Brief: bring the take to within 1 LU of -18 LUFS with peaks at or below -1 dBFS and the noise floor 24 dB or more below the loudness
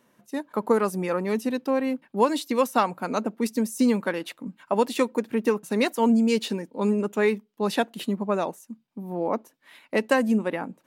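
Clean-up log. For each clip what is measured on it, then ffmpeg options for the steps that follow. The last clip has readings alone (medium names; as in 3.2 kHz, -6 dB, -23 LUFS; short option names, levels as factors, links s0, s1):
loudness -25.5 LUFS; peak level -7.5 dBFS; loudness target -18.0 LUFS
-> -af "volume=2.37,alimiter=limit=0.891:level=0:latency=1"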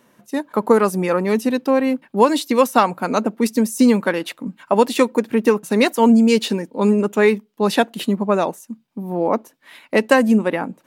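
loudness -18.0 LUFS; peak level -1.0 dBFS; noise floor -58 dBFS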